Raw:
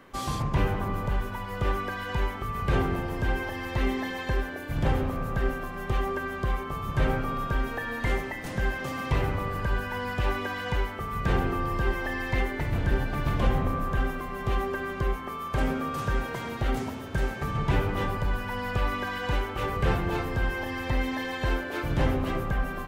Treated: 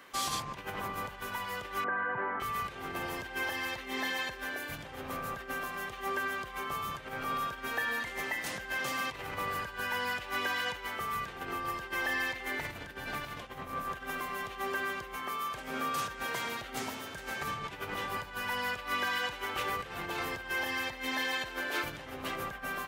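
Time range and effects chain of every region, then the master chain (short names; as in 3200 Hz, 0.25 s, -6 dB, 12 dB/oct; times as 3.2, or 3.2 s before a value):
1.84–2.4 elliptic band-pass 120–1600 Hz, stop band 50 dB + fast leveller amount 50%
whole clip: high shelf 7200 Hz -9.5 dB; negative-ratio compressor -30 dBFS, ratio -1; tilt +4 dB/oct; gain -3.5 dB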